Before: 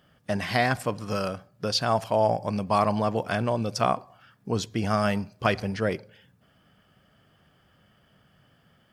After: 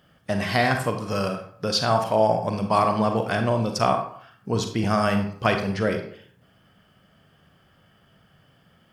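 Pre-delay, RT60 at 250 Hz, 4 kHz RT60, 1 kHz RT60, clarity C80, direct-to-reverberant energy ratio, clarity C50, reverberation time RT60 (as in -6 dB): 36 ms, 0.55 s, 0.35 s, 0.55 s, 10.5 dB, 5.0 dB, 7.0 dB, 0.55 s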